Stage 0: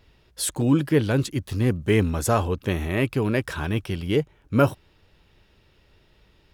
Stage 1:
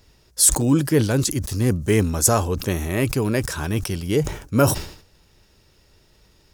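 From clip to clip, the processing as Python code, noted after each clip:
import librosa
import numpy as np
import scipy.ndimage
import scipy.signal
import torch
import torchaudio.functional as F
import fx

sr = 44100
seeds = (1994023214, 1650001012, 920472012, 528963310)

y = fx.high_shelf_res(x, sr, hz=4400.0, db=9.5, q=1.5)
y = fx.sustainer(y, sr, db_per_s=100.0)
y = y * librosa.db_to_amplitude(1.5)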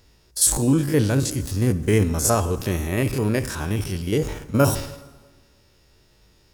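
y = fx.spec_steps(x, sr, hold_ms=50)
y = fx.rev_plate(y, sr, seeds[0], rt60_s=1.4, hf_ratio=0.8, predelay_ms=0, drr_db=13.0)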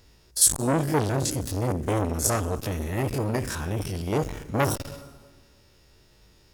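y = fx.transformer_sat(x, sr, knee_hz=1400.0)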